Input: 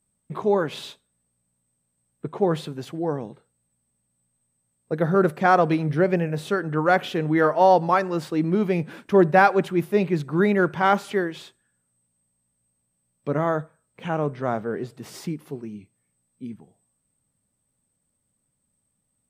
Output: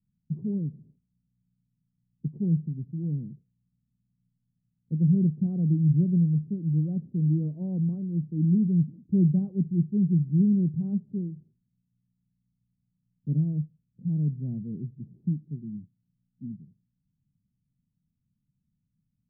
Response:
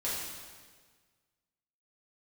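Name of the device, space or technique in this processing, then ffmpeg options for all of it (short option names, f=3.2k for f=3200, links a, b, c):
the neighbour's flat through the wall: -af "lowpass=f=220:w=0.5412,lowpass=f=220:w=1.3066,equalizer=f=160:t=o:w=0.79:g=5.5"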